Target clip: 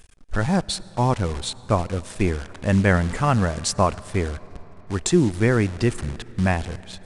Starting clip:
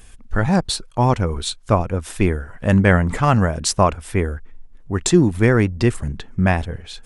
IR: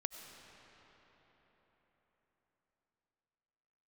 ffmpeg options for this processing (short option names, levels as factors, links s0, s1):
-filter_complex "[0:a]acrusher=bits=6:dc=4:mix=0:aa=0.000001,asplit=2[s0][s1];[1:a]atrim=start_sample=2205[s2];[s1][s2]afir=irnorm=-1:irlink=0,volume=0.266[s3];[s0][s3]amix=inputs=2:normalize=0,aresample=22050,aresample=44100,volume=0.531"